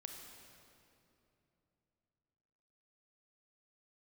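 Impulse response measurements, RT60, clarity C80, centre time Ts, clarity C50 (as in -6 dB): 2.9 s, 4.5 dB, 78 ms, 3.5 dB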